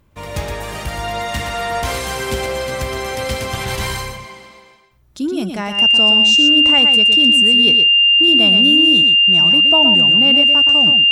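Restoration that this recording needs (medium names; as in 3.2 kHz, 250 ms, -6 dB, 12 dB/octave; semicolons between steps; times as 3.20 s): band-stop 2.8 kHz, Q 30; inverse comb 119 ms -6.5 dB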